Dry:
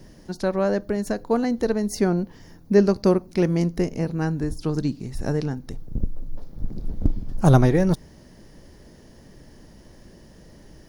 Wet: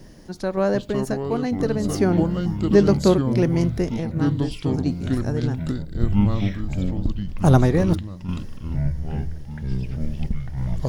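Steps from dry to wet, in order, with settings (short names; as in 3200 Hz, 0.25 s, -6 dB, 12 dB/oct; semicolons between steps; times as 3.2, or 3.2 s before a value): echoes that change speed 0.328 s, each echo -6 st, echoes 3; random-step tremolo; gain +2 dB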